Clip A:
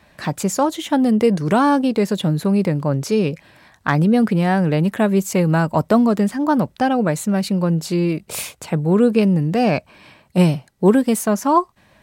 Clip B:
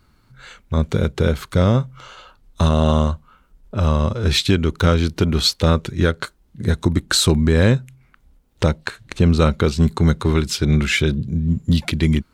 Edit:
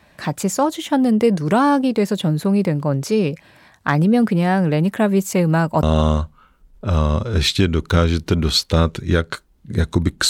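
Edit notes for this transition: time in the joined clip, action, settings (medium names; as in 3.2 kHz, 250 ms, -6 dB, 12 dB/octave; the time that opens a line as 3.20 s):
clip A
5.83 s: go over to clip B from 2.73 s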